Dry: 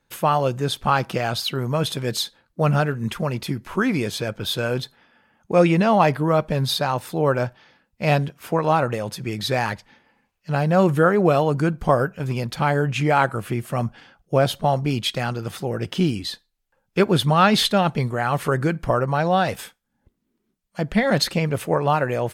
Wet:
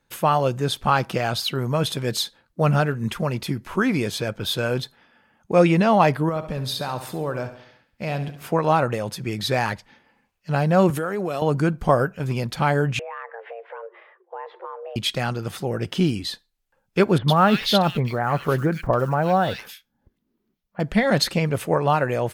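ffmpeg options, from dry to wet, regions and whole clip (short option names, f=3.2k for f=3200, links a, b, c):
-filter_complex "[0:a]asettb=1/sr,asplit=3[a][b][c];[a]atrim=end=6.294[d];[b]atrim=start=6.29:end=8.49,asetpts=PTS-STARTPTS,afade=t=in:d=0.004:c=qsin,afade=t=out:st=2.196:d=0.004:c=qsin,acompressor=threshold=-26dB:ratio=2.5:attack=3.2:release=140:knee=1:detection=peak,aecho=1:1:69|138|207|276|345:0.266|0.133|0.0665|0.0333|0.0166,atrim=end_sample=97020[e];[c]atrim=start=8.486[f];[d][e]acrossfade=d=0.004:c1=hsin:c2=qsin[g];[g][f]acrossfade=d=0.004:c1=qsin:c2=hsin,asettb=1/sr,asplit=3[h][i][j];[h]atrim=end=10.904[k];[i]atrim=start=10.9:end=11.42,asetpts=PTS-STARTPTS,afade=t=in:d=0.004:c=qsin,afade=t=out:st=0.516:d=0.004:c=qsin,highpass=160,highshelf=f=3.9k:g=9,acompressor=threshold=-22dB:ratio=6:attack=3.2:release=140:knee=1:detection=peak[l];[j]atrim=start=11.416[m];[k][l]acrossfade=d=0.004:c1=hsin:c2=qsin[n];[n][m]acrossfade=d=0.004:c1=qsin:c2=hsin,asettb=1/sr,asplit=3[o][p][q];[o]atrim=end=12.994[r];[p]atrim=start=12.99:end=14.96,asetpts=PTS-STARTPTS,afade=t=in:d=0.004:c=qsin,afade=t=out:st=1.966:d=0.004:c=qsin,lowpass=f=2k:w=0.5412,lowpass=f=2k:w=1.3066,acompressor=threshold=-35dB:ratio=4:attack=3.2:release=140:knee=1:detection=peak,afreqshift=340[s];[q]atrim=start=14.956[t];[r][s]acrossfade=d=0.004:c1=hsin:c2=qsin[u];[u][t]acrossfade=d=0.004:c1=qsin:c2=hsin,asettb=1/sr,asplit=3[v][w][x];[v]atrim=end=17.184[y];[w]atrim=start=17.18:end=20.8,asetpts=PTS-STARTPTS,afade=t=in:d=0.004:c=qsin,afade=t=out:st=3.616:d=0.004:c=qsin,equalizer=f=8.4k:t=o:w=0.6:g=-13.5,acrusher=bits=9:mode=log:mix=0:aa=0.000001,acrossover=split=2000[z][aa];[aa]adelay=100[ab];[z][ab]amix=inputs=2:normalize=0,atrim=end_sample=159642[ac];[x]atrim=start=20.796[ad];[y][ac]acrossfade=d=0.004:c1=hsin:c2=qsin[ae];[ae][ad]acrossfade=d=0.004:c1=qsin:c2=hsin"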